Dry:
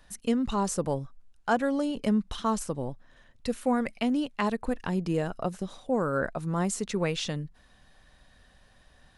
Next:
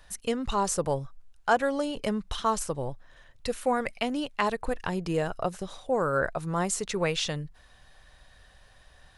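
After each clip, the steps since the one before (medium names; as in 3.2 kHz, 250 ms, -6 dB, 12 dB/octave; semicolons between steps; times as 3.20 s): peaking EQ 230 Hz -10 dB 1 oct; trim +3.5 dB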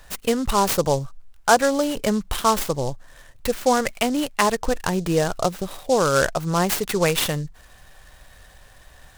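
delay time shaken by noise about 5.5 kHz, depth 0.044 ms; trim +7.5 dB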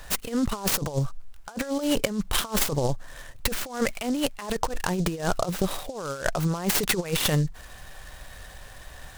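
compressor with a negative ratio -25 dBFS, ratio -0.5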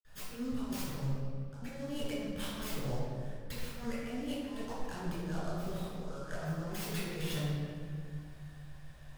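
reverberation RT60 2.0 s, pre-delay 49 ms; trim +1.5 dB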